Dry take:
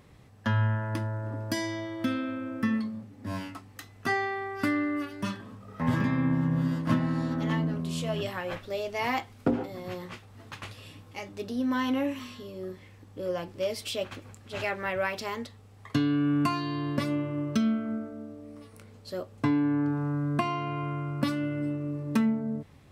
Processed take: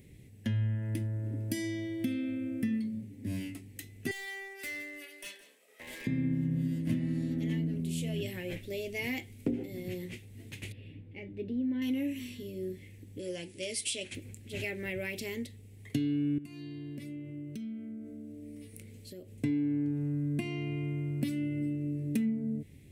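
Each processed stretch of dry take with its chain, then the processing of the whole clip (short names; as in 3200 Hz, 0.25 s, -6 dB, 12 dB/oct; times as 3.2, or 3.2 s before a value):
4.11–6.07 HPF 580 Hz 24 dB/oct + hard clip -32.5 dBFS + echo 0.166 s -15 dB
10.72–11.82 air absorption 470 m + notch 1200 Hz, Q 7.5
13.19–14.15 brick-wall FIR low-pass 11000 Hz + tilt +2.5 dB/oct
16.38–19.34 compressor 4:1, threshold -42 dBFS + mismatched tape noise reduction encoder only
whole clip: EQ curve 380 Hz 0 dB, 1200 Hz -29 dB, 2100 Hz -1 dB, 5000 Hz -7 dB, 9000 Hz +4 dB; compressor 2:1, threshold -34 dBFS; gain +1.5 dB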